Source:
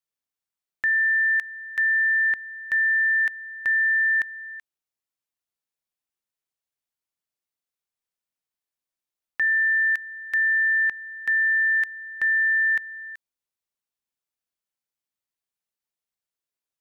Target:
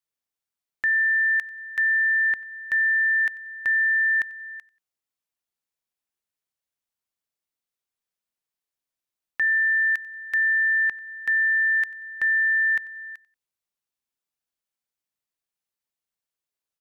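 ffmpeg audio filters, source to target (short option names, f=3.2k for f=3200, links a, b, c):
-af "aecho=1:1:92|184:0.0794|0.023"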